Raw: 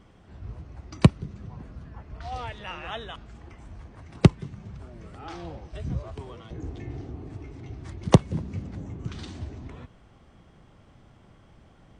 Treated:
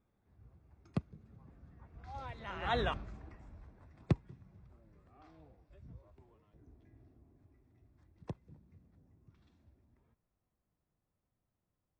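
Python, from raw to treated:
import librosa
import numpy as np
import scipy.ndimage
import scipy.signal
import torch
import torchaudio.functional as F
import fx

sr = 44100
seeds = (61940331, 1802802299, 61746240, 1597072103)

y = fx.doppler_pass(x, sr, speed_mps=26, closest_m=2.3, pass_at_s=2.83)
y = fx.high_shelf(y, sr, hz=3800.0, db=-9.5)
y = fx.notch(y, sr, hz=3000.0, q=8.7)
y = F.gain(torch.from_numpy(y), 7.5).numpy()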